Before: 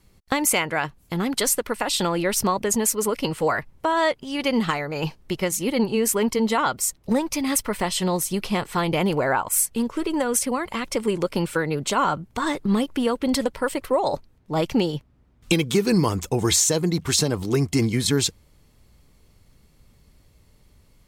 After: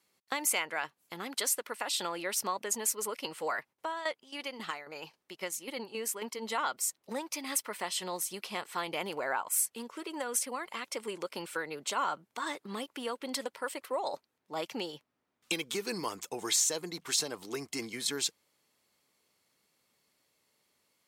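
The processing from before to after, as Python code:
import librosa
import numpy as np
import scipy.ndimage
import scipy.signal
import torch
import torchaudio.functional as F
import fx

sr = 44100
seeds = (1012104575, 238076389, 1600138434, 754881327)

y = fx.tremolo_shape(x, sr, shape='saw_down', hz=3.7, depth_pct=fx.line((3.72, 80.0), (6.41, 55.0)), at=(3.72, 6.41), fade=0.02)
y = scipy.signal.sosfilt(scipy.signal.butter(2, 240.0, 'highpass', fs=sr, output='sos'), y)
y = fx.low_shelf(y, sr, hz=460.0, db=-11.5)
y = y * librosa.db_to_amplitude(-8.0)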